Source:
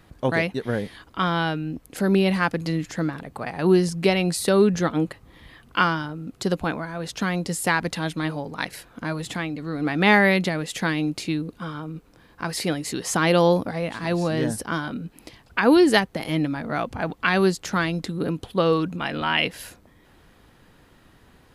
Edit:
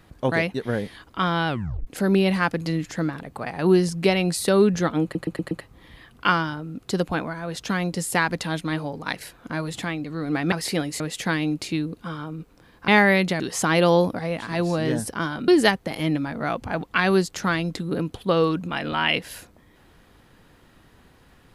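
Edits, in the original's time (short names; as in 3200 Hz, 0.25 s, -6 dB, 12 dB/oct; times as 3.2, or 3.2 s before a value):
1.48 tape stop 0.39 s
5.03 stutter 0.12 s, 5 plays
10.04–10.56 swap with 12.44–12.92
15–15.77 cut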